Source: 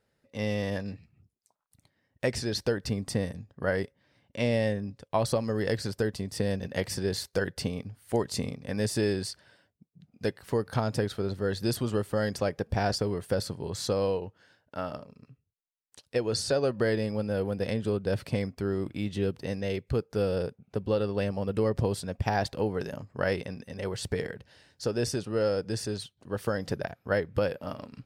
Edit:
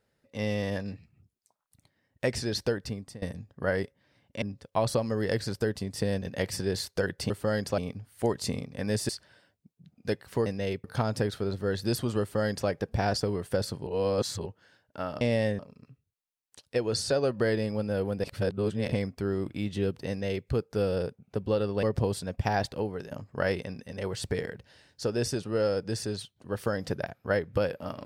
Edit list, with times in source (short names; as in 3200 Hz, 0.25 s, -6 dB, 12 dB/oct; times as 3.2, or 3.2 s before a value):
2.66–3.22 fade out, to -22.5 dB
4.42–4.8 move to 14.99
8.99–9.25 cut
11.99–12.47 copy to 7.68
13.65–14.24 reverse
17.64–18.32 reverse
19.49–19.87 copy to 10.62
21.23–21.64 cut
22.42–22.92 fade out, to -8 dB